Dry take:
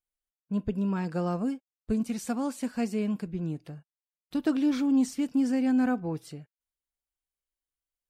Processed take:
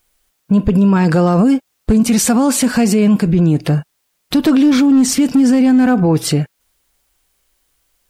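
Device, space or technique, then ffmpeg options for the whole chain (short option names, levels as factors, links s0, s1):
loud club master: -af "acompressor=threshold=0.0316:ratio=2,asoftclip=type=hard:threshold=0.0596,alimiter=level_in=50.1:limit=0.891:release=50:level=0:latency=1,volume=0.562"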